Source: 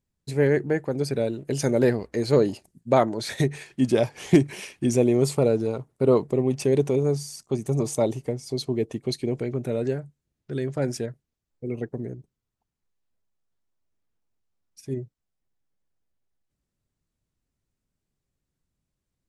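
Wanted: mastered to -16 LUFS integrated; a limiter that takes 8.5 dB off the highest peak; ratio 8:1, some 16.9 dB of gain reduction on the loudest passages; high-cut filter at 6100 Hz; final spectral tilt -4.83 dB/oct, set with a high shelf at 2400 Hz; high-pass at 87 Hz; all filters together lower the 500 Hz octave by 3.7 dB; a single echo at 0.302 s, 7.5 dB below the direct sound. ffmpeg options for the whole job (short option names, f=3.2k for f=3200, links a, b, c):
-af "highpass=87,lowpass=6.1k,equalizer=f=500:t=o:g=-5,highshelf=f=2.4k:g=6.5,acompressor=threshold=-30dB:ratio=8,alimiter=level_in=2.5dB:limit=-24dB:level=0:latency=1,volume=-2.5dB,aecho=1:1:302:0.422,volume=21.5dB"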